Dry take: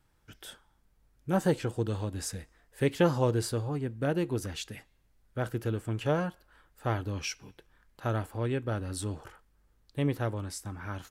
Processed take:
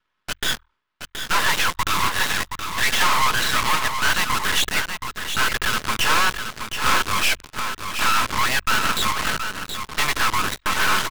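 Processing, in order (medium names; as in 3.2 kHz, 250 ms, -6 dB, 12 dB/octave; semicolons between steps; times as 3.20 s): Chebyshev band-pass 930–3900 Hz, order 5; tilt EQ -2.5 dB/octave; comb 4.8 ms, depth 37%; in parallel at -9 dB: fuzz box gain 64 dB, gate -56 dBFS; on the sum: frequency shift +39 Hz; on a send: delay 723 ms -7.5 dB; on the sum: half-wave rectifier; trim +8.5 dB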